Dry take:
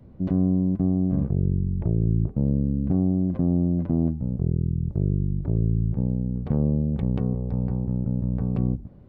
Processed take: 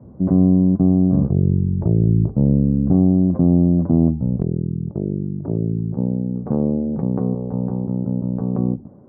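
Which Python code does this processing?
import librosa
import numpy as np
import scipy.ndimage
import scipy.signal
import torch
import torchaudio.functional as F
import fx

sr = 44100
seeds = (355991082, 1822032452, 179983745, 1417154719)

y = scipy.signal.sosfilt(scipy.signal.butter(4, 1200.0, 'lowpass', fs=sr, output='sos'), x)
y = fx.hum_notches(y, sr, base_hz=50, count=3)
y = fx.highpass(y, sr, hz=fx.steps((0.0, 84.0), (4.42, 180.0)), slope=12)
y = y * 10.0 ** (8.0 / 20.0)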